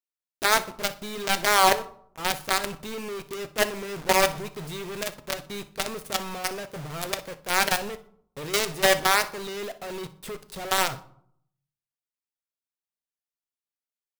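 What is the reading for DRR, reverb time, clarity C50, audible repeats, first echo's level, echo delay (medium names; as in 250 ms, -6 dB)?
9.5 dB, 0.65 s, 15.5 dB, 1, -19.0 dB, 61 ms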